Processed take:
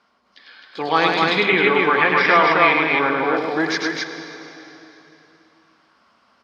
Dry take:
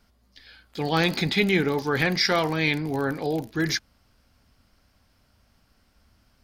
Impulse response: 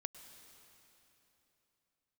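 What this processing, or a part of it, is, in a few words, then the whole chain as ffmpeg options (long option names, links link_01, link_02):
station announcement: -filter_complex "[0:a]highpass=330,lowpass=4200,equalizer=frequency=1100:width_type=o:width=0.49:gain=10,aecho=1:1:102|262.4:0.631|0.794[link_01];[1:a]atrim=start_sample=2205[link_02];[link_01][link_02]afir=irnorm=-1:irlink=0,asettb=1/sr,asplit=3[link_03][link_04][link_05];[link_03]atrim=end=1.434[link_06];[link_04]atrim=start=1.43:end=3.37,asetpts=PTS-STARTPTS,afade=type=in:duration=0.004:curve=qsin,afade=type=out:start_time=1.936:duration=0.004:curve=qsin,highshelf=frequency=3800:width_type=q:width=1.5:gain=-9.5[link_07];[link_05]atrim=start=3.366[link_08];[link_06][link_07]acrossfade=duration=0.004:curve1=hsin:curve2=qsin[link_09];[link_09][link_08]acrossfade=duration=0.004:curve1=qsin:curve2=hsin,volume=7.5dB"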